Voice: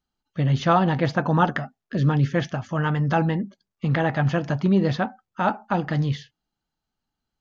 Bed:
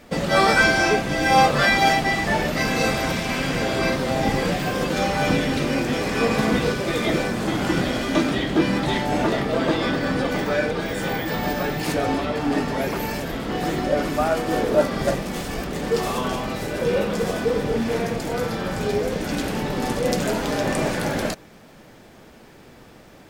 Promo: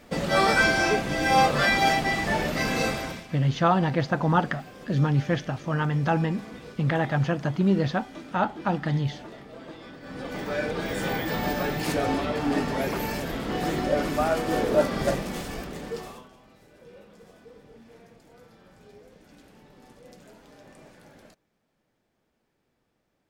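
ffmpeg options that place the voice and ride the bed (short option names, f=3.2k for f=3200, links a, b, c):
-filter_complex "[0:a]adelay=2950,volume=-2.5dB[a];[1:a]volume=14.5dB,afade=t=out:st=2.8:d=0.48:silence=0.133352,afade=t=in:st=10.01:d=0.94:silence=0.11885,afade=t=out:st=15.16:d=1.12:silence=0.0562341[b];[a][b]amix=inputs=2:normalize=0"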